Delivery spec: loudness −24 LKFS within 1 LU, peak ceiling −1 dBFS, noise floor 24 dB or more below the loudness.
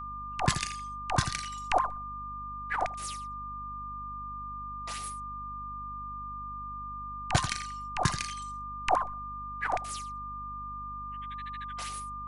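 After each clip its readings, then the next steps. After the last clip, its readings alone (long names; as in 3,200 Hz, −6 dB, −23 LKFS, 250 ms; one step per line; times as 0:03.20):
mains hum 50 Hz; hum harmonics up to 250 Hz; level of the hum −44 dBFS; interfering tone 1,200 Hz; level of the tone −37 dBFS; integrated loudness −34.5 LKFS; sample peak −9.5 dBFS; target loudness −24.0 LKFS
→ mains-hum notches 50/100/150/200/250 Hz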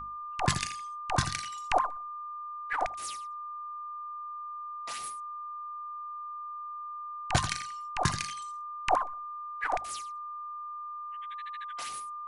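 mains hum none found; interfering tone 1,200 Hz; level of the tone −37 dBFS
→ notch filter 1,200 Hz, Q 30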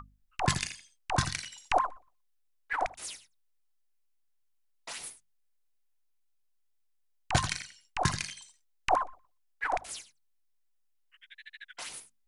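interfering tone none found; integrated loudness −33.5 LKFS; sample peak −9.5 dBFS; target loudness −24.0 LKFS
→ level +9.5 dB
brickwall limiter −1 dBFS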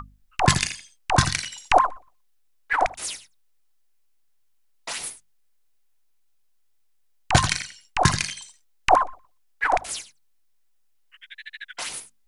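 integrated loudness −24.0 LKFS; sample peak −1.0 dBFS; background noise floor −62 dBFS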